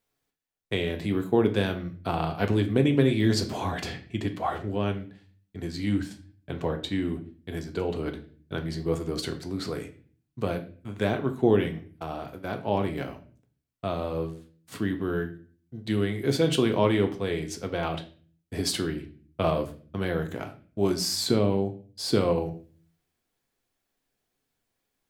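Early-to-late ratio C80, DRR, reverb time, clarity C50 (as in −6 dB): 17.0 dB, 5.0 dB, 0.40 s, 13.0 dB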